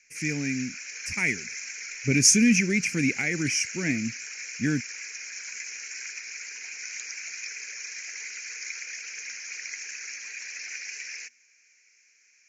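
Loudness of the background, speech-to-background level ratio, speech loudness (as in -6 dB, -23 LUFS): -35.5 LUFS, 11.0 dB, -24.5 LUFS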